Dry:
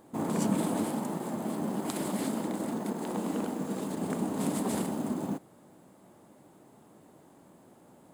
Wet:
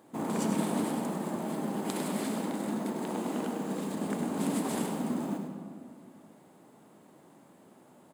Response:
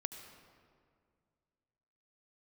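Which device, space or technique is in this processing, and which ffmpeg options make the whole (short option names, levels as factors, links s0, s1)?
PA in a hall: -filter_complex "[0:a]highpass=120,equalizer=f=2400:t=o:w=1.9:g=3,aecho=1:1:101:0.355[s0];[1:a]atrim=start_sample=2205[s1];[s0][s1]afir=irnorm=-1:irlink=0"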